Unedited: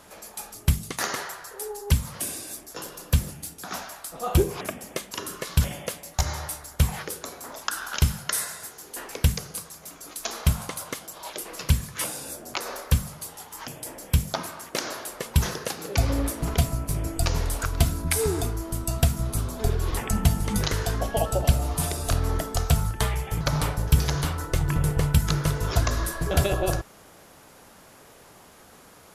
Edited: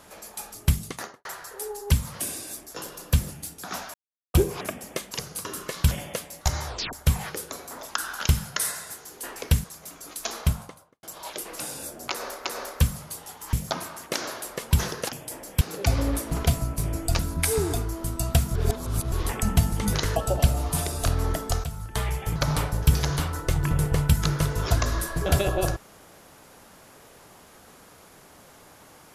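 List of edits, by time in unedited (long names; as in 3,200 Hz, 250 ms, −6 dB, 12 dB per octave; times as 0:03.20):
0:00.82–0:01.25: fade out and dull
0:03.94–0:04.34: silence
0:06.40: tape stop 0.26 s
0:09.37–0:09.64: move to 0:05.18
0:10.29–0:11.03: fade out and dull
0:11.60–0:12.06: remove
0:12.56–0:12.91: repeat, 2 plays
0:13.64–0:14.16: move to 0:15.72
0:17.30–0:17.87: remove
0:19.23–0:19.80: reverse
0:20.84–0:21.21: remove
0:22.69–0:23.13: fade in quadratic, from −12.5 dB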